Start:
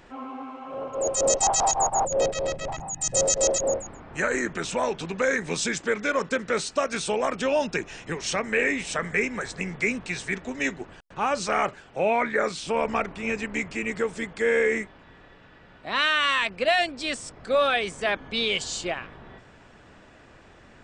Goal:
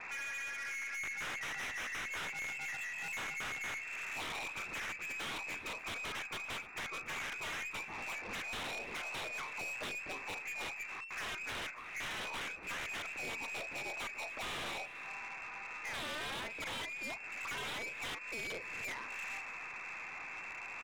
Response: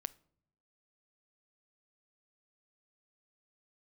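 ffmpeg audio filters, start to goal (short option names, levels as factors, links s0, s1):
-filter_complex "[0:a]afreqshift=-19,asplit=2[s0][s1];[s1]adelay=37,volume=0.2[s2];[s0][s2]amix=inputs=2:normalize=0,lowpass=f=2300:t=q:w=0.5098,lowpass=f=2300:t=q:w=0.6013,lowpass=f=2300:t=q:w=0.9,lowpass=f=2300:t=q:w=2.563,afreqshift=-2700,aresample=8000,aeval=exprs='(mod(11.2*val(0)+1,2)-1)/11.2':c=same,aresample=44100,acompressor=threshold=0.0112:ratio=20,aeval=exprs='(tanh(224*val(0)+0.15)-tanh(0.15))/224':c=same,asplit=2[s3][s4];[s4]aecho=0:1:290:0.126[s5];[s3][s5]amix=inputs=2:normalize=0,volume=2.51"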